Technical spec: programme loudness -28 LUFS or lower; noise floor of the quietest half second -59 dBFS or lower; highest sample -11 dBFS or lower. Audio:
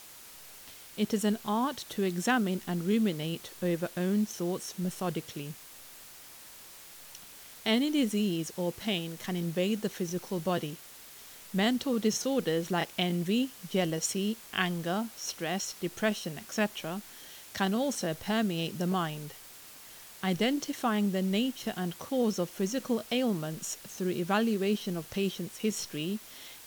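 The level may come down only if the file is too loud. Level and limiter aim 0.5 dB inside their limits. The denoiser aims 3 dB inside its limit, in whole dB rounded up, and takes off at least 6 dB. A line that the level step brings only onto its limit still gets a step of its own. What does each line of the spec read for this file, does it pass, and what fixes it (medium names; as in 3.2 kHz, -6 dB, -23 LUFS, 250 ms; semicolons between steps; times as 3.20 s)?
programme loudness -31.5 LUFS: pass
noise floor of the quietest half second -50 dBFS: fail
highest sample -13.5 dBFS: pass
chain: noise reduction 12 dB, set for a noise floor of -50 dBFS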